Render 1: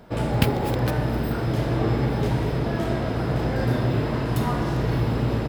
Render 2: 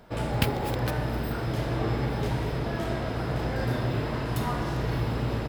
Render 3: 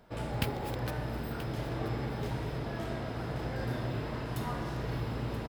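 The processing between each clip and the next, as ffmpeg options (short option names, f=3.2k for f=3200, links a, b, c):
-af "equalizer=f=220:t=o:w=2.9:g=-4.5,volume=-2dB"
-af "aecho=1:1:980:0.224,volume=-7dB"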